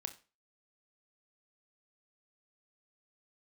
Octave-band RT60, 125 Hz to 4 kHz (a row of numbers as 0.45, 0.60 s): 0.35, 0.35, 0.35, 0.35, 0.30, 0.30 s